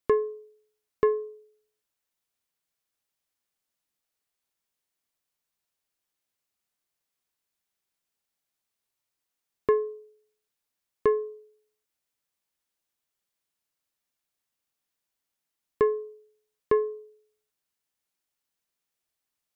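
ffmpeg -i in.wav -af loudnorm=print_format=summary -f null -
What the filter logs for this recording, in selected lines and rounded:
Input Integrated:    -28.2 LUFS
Input True Peak:     -11.2 dBTP
Input LRA:             3.0 LU
Input Threshold:     -40.2 LUFS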